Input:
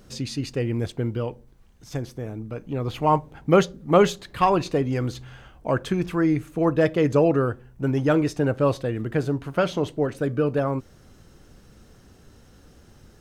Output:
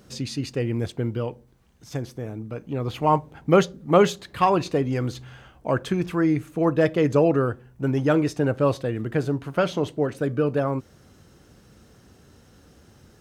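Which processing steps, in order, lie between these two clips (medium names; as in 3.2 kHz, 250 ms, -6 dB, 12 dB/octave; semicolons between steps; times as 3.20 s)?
high-pass 63 Hz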